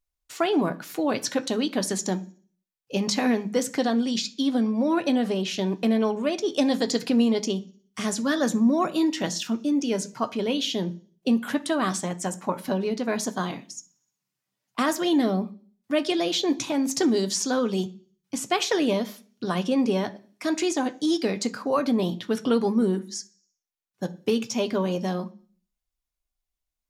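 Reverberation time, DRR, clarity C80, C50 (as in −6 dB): 0.45 s, 8.0 dB, 23.5 dB, 19.5 dB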